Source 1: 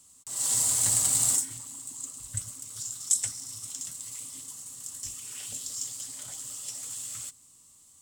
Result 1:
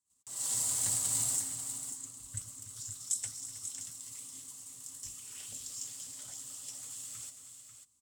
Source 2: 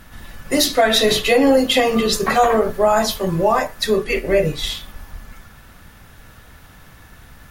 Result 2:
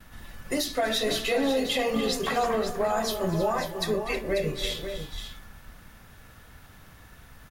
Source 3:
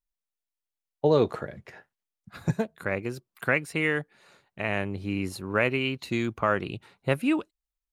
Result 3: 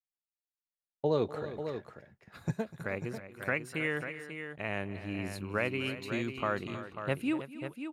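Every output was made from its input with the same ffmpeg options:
ffmpeg -i in.wav -af "agate=range=-24dB:threshold=-54dB:ratio=16:detection=peak,alimiter=limit=-10.5dB:level=0:latency=1:release=235,aecho=1:1:247|318|542:0.133|0.211|0.355,volume=-7dB" out.wav

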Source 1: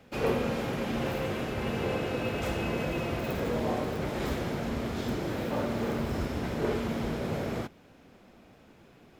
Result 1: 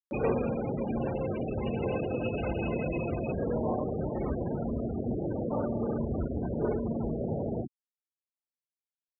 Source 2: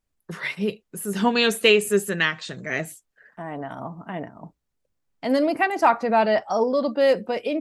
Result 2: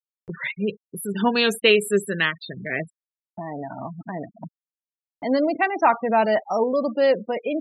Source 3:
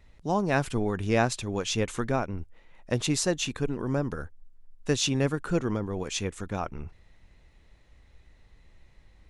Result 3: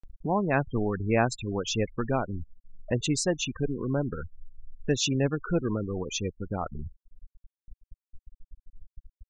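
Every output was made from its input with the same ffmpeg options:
ffmpeg -i in.wav -af "afftfilt=real='re*gte(hypot(re,im),0.0398)':imag='im*gte(hypot(re,im),0.0398)':win_size=1024:overlap=0.75,acompressor=mode=upward:threshold=-28dB:ratio=2.5" out.wav

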